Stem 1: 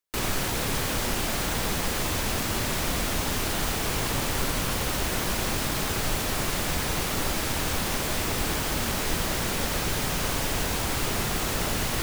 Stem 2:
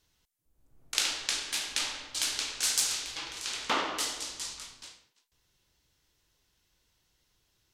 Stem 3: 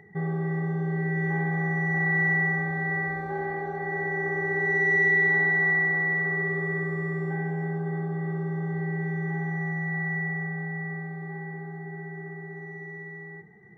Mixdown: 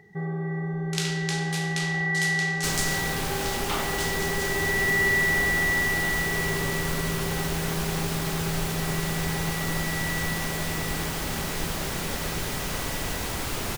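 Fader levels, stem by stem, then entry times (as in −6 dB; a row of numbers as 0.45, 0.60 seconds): −3.0, −2.5, −1.5 decibels; 2.50, 0.00, 0.00 seconds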